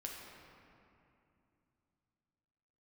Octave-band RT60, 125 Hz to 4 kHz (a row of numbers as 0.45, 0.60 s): 3.9, 3.6, 2.8, 2.7, 2.3, 1.6 s